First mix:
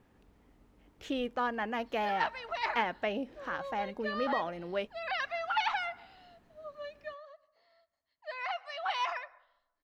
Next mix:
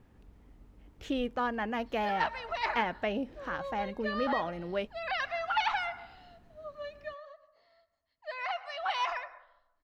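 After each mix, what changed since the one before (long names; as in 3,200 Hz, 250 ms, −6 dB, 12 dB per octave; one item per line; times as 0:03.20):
background: send +7.5 dB
master: add low-shelf EQ 150 Hz +10.5 dB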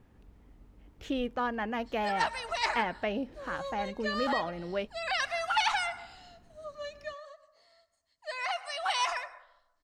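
background: remove high-frequency loss of the air 240 metres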